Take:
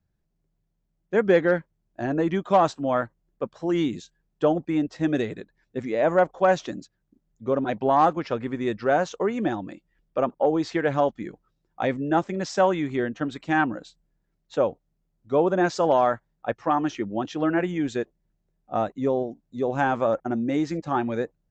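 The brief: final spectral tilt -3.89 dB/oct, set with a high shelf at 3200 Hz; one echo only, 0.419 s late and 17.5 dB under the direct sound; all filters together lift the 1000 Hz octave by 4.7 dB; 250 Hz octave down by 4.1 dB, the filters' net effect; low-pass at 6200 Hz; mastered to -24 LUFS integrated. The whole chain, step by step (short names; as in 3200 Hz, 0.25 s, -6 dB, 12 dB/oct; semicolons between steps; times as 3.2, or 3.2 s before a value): LPF 6200 Hz; bell 250 Hz -6.5 dB; bell 1000 Hz +6.5 dB; high shelf 3200 Hz +5.5 dB; echo 0.419 s -17.5 dB; gain -0.5 dB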